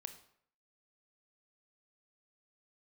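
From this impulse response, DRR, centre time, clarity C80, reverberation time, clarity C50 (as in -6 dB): 8.5 dB, 9 ms, 14.5 dB, 0.65 s, 11.5 dB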